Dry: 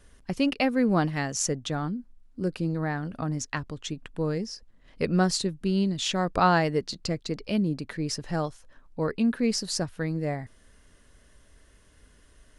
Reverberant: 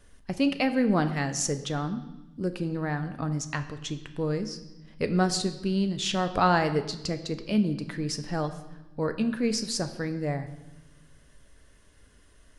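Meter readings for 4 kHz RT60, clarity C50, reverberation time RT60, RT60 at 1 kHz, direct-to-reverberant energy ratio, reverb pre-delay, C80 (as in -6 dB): 1.1 s, 12.0 dB, 1.0 s, 1.0 s, 8.5 dB, 7 ms, 14.0 dB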